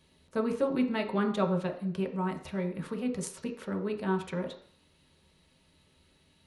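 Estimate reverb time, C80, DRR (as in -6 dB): 0.55 s, 12.5 dB, 1.0 dB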